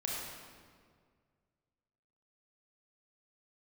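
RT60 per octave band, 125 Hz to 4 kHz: 2.5, 2.1, 2.0, 1.8, 1.5, 1.3 s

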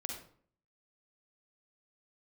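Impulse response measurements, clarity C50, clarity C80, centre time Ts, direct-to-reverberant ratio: 3.0 dB, 7.5 dB, 34 ms, 1.5 dB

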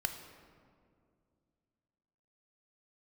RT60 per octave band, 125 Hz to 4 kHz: 3.0, 2.9, 2.5, 2.0, 1.5, 1.1 s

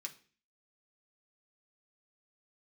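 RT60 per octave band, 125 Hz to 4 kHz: 0.55, 0.55, 0.45, 0.40, 0.45, 0.40 s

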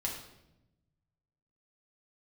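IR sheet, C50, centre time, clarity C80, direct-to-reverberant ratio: 5.0 dB, 34 ms, 7.5 dB, -2.5 dB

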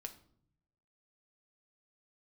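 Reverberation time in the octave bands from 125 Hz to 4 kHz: 1.1, 1.0, 0.70, 0.55, 0.40, 0.40 s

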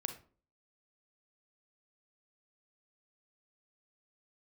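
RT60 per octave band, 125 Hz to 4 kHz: 0.50, 0.55, 0.45, 0.40, 0.30, 0.25 s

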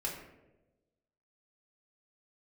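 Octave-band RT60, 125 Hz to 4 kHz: 1.3, 1.3, 1.3, 0.80, 0.75, 0.50 s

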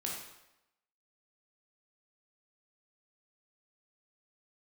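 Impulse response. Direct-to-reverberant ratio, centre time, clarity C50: -3.0 dB, 53 ms, 1.5 dB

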